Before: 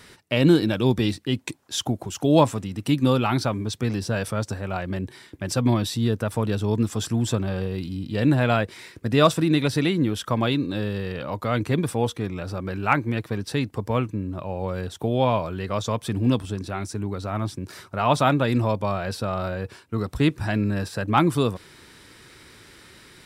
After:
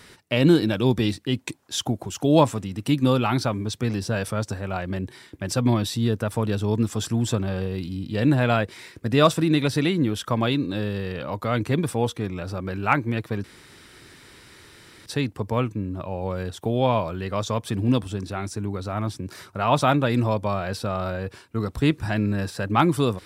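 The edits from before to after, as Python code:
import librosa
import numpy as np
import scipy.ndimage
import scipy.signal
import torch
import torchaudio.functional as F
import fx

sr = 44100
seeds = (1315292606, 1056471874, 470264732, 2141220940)

y = fx.edit(x, sr, fx.insert_room_tone(at_s=13.44, length_s=1.62), tone=tone)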